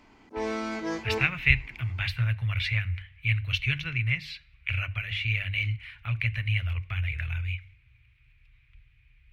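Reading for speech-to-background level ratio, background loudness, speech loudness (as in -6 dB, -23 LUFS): 5.0 dB, -33.5 LUFS, -28.5 LUFS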